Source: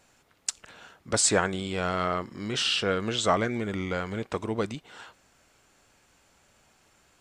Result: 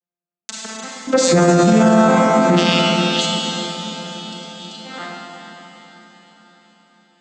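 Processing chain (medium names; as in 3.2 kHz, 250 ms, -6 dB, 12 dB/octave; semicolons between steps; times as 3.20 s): vocoder on a broken chord major triad, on F3, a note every 415 ms; gate -60 dBFS, range -49 dB; 2.79–4.83 s: steep high-pass 3 kHz 96 dB/octave; echo that smears into a reverb 460 ms, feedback 58%, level -13 dB; Schroeder reverb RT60 3.1 s, combs from 33 ms, DRR -1 dB; loudness maximiser +23.5 dB; endings held to a fixed fall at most 180 dB/s; trim -3.5 dB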